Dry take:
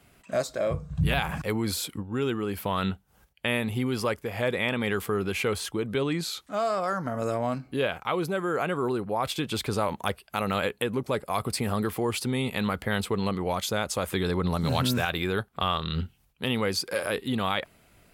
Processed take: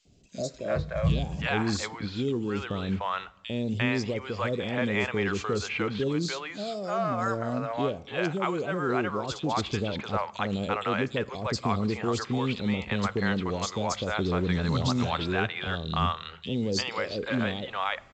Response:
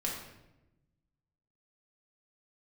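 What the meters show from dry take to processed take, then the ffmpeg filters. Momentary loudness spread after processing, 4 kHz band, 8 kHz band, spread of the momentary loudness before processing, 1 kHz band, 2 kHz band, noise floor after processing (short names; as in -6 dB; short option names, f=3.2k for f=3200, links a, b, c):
5 LU, -2.0 dB, -4.0 dB, 4 LU, -0.5 dB, 0.0 dB, -48 dBFS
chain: -filter_complex "[0:a]acrossover=split=570|3500[a][b][c];[a]adelay=50[d];[b]adelay=350[e];[d][e][c]amix=inputs=3:normalize=0,asplit=2[f][g];[1:a]atrim=start_sample=2205[h];[g][h]afir=irnorm=-1:irlink=0,volume=-21.5dB[i];[f][i]amix=inputs=2:normalize=0" -ar 16000 -c:a pcm_mulaw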